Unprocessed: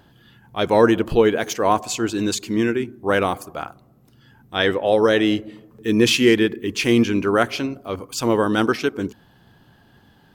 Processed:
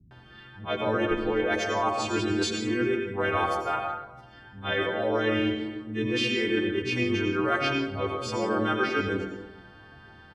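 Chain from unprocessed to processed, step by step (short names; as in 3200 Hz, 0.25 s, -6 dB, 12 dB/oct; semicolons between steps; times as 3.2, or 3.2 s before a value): frequency quantiser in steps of 2 st; in parallel at +1 dB: limiter -9.5 dBFS, peak gain reduction 9 dB; on the sum: phaser 1.3 Hz, delay 3.9 ms, feedback 26%; LPF 2500 Hz 12 dB/oct; reverse; compressor, threshold -21 dBFS, peak gain reduction 15 dB; reverse; bands offset in time lows, highs 0.11 s, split 220 Hz; reverb RT60 1.1 s, pre-delay 77 ms, DRR 3 dB; gain -3.5 dB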